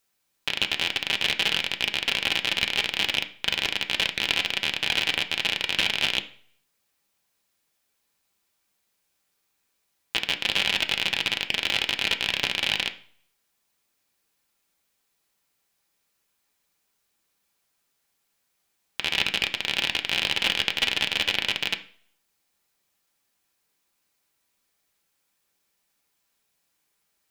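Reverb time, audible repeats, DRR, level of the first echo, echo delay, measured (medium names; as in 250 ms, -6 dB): 0.50 s, no echo, 4.0 dB, no echo, no echo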